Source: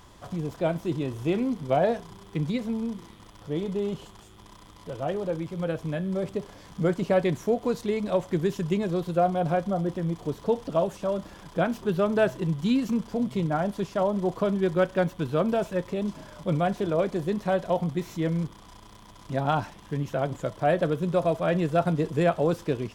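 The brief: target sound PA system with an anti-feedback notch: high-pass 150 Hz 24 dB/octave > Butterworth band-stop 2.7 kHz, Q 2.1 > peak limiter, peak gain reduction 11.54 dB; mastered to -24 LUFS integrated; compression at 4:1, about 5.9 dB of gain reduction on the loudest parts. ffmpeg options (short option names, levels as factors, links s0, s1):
-af "acompressor=threshold=0.0562:ratio=4,highpass=f=150:w=0.5412,highpass=f=150:w=1.3066,asuperstop=centerf=2700:order=8:qfactor=2.1,volume=4.22,alimiter=limit=0.178:level=0:latency=1"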